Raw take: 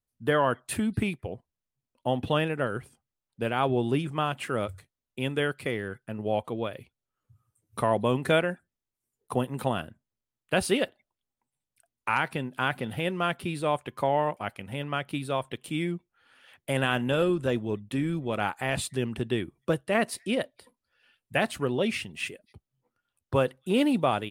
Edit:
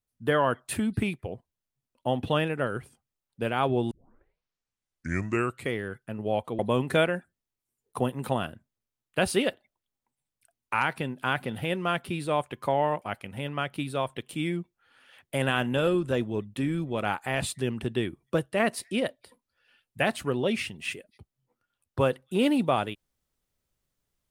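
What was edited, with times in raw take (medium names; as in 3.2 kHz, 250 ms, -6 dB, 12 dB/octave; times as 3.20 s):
3.91 s: tape start 1.82 s
6.59–7.94 s: delete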